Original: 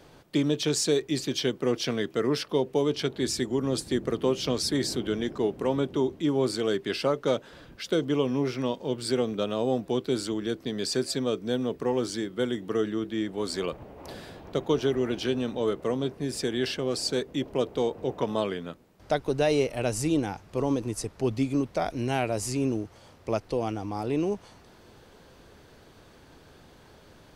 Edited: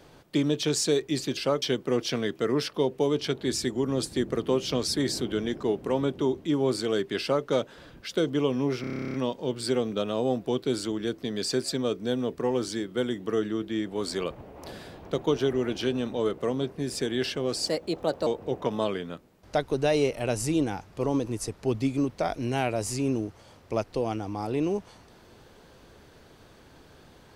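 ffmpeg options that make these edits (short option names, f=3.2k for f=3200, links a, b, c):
-filter_complex "[0:a]asplit=16[a][b][c][d][e][f][g][h][i][j][k][l][m][n][o][p];[a]atrim=end=1.372[q];[b]atrim=start=6.948:end=7.202[r];[c]atrim=start=1.368:end=8.592[s];[d]atrim=start=8.558:end=8.592[t];[e]atrim=start=8.558:end=8.592[u];[f]atrim=start=8.558:end=8.592[v];[g]atrim=start=8.558:end=8.592[w];[h]atrim=start=8.558:end=8.592[x];[i]atrim=start=8.558:end=8.592[y];[j]atrim=start=8.558:end=8.592[z];[k]atrim=start=8.558:end=8.592[aa];[l]atrim=start=8.558:end=8.592[ab];[m]atrim=start=8.558:end=8.592[ac];[n]atrim=start=8.558:end=17.094[ad];[o]atrim=start=17.09:end=17.83,asetpts=PTS-STARTPTS,asetrate=54684,aresample=44100[ae];[p]atrim=start=17.826[af];[q][r]acrossfade=d=0.004:c1=hsin:c2=hsin[ag];[ag][s]acrossfade=d=0.004:c1=hsin:c2=hsin[ah];[ah][t]acrossfade=d=0.004:c1=hsin:c2=hsin[ai];[ai][u]acrossfade=d=0.004:c1=hsin:c2=hsin[aj];[aj][v]acrossfade=d=0.004:c1=hsin:c2=hsin[ak];[ak][w]acrossfade=d=0.004:c1=hsin:c2=hsin[al];[al][x]acrossfade=d=0.004:c1=hsin:c2=hsin[am];[am][y]acrossfade=d=0.004:c1=hsin:c2=hsin[an];[an][z]acrossfade=d=0.004:c1=hsin:c2=hsin[ao];[ao][aa]acrossfade=d=0.004:c1=hsin:c2=hsin[ap];[ap][ab]acrossfade=d=0.004:c1=hsin:c2=hsin[aq];[aq][ac]acrossfade=d=0.004:c1=hsin:c2=hsin[ar];[ar][ad]acrossfade=d=0.004:c1=hsin:c2=hsin[as];[as][ae]acrossfade=d=0.004:c1=hsin:c2=hsin[at];[at][af]acrossfade=d=0.004:c1=hsin:c2=hsin"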